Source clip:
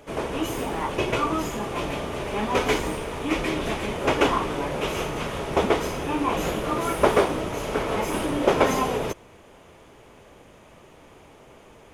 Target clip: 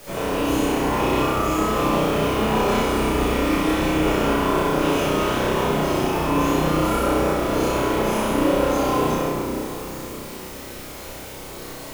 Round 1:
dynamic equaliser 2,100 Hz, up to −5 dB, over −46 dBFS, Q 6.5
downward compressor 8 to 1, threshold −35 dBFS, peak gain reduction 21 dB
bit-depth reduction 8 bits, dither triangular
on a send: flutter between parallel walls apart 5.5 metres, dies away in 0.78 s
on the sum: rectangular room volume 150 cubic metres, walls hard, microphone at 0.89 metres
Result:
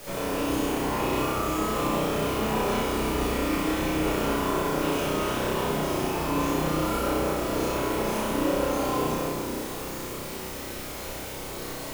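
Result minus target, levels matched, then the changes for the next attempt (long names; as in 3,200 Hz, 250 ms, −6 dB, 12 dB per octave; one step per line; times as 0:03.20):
downward compressor: peak gain reduction +6 dB
change: downward compressor 8 to 1, threshold −28 dBFS, peak gain reduction 15 dB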